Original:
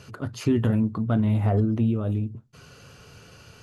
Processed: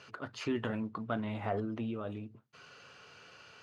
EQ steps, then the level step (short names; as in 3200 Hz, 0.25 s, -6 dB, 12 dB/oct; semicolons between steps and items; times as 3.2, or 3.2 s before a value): HPF 1300 Hz 6 dB/oct; air absorption 82 m; high shelf 4700 Hz -9.5 dB; +2.0 dB